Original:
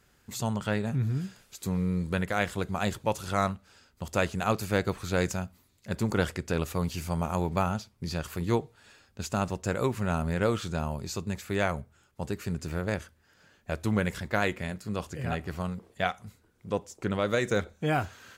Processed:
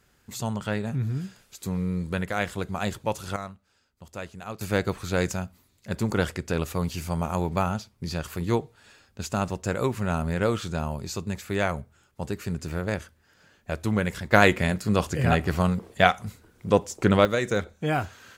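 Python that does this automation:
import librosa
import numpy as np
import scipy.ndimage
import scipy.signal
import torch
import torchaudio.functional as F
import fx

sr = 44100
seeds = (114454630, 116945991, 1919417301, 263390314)

y = fx.gain(x, sr, db=fx.steps((0.0, 0.5), (3.36, -10.0), (4.61, 2.0), (14.32, 10.0), (17.25, 1.5)))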